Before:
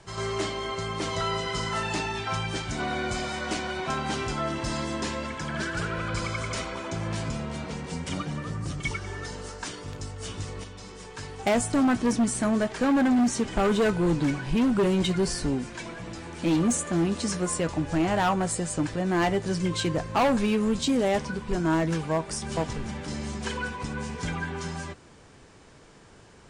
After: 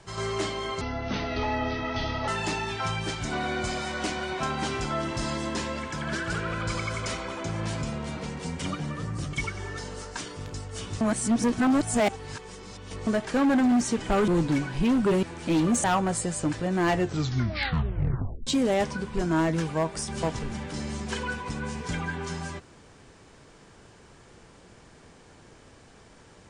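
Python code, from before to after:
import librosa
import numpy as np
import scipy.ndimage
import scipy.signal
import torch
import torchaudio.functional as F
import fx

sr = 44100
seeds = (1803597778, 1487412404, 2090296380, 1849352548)

y = fx.edit(x, sr, fx.speed_span(start_s=0.81, length_s=0.94, speed=0.64),
    fx.reverse_span(start_s=10.48, length_s=2.06),
    fx.cut(start_s=13.75, length_s=0.25),
    fx.cut(start_s=14.95, length_s=1.24),
    fx.cut(start_s=16.8, length_s=1.38),
    fx.tape_stop(start_s=19.23, length_s=1.58), tone=tone)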